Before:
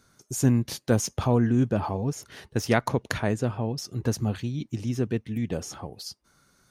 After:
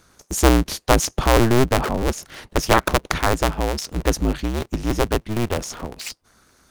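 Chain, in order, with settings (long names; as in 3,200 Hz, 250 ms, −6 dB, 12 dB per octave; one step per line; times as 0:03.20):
sub-harmonics by changed cycles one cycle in 2, inverted
level +6.5 dB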